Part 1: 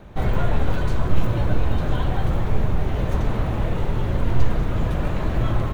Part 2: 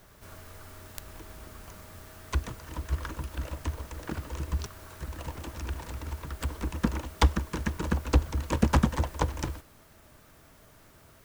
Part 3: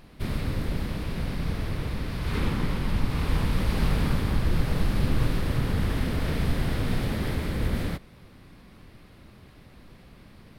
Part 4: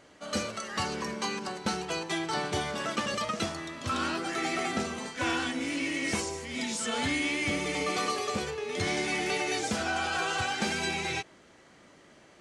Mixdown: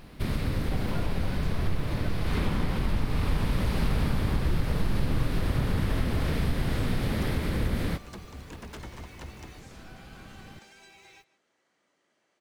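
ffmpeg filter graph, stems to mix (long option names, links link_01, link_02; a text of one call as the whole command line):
ffmpeg -i stem1.wav -i stem2.wav -i stem3.wav -i stem4.wav -filter_complex "[0:a]adelay=550,volume=-8.5dB[link_01];[1:a]aeval=exprs='0.0708*(abs(mod(val(0)/0.0708+3,4)-2)-1)':channel_layout=same,volume=-13dB[link_02];[2:a]volume=2.5dB[link_03];[3:a]highpass=frequency=400:poles=1,acompressor=threshold=-35dB:ratio=6,volume=-16dB,asplit=2[link_04][link_05];[link_05]volume=-19dB,aecho=0:1:153:1[link_06];[link_01][link_02][link_03][link_04][link_06]amix=inputs=5:normalize=0,acompressor=threshold=-25dB:ratio=2" out.wav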